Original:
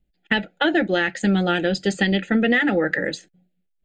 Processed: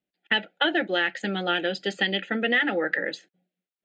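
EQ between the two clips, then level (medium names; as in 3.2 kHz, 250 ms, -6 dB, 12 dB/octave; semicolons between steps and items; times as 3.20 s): bass shelf 390 Hz -7.5 dB; dynamic bell 3.1 kHz, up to +6 dB, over -43 dBFS, Q 5.7; band-pass 220–4200 Hz; -2.0 dB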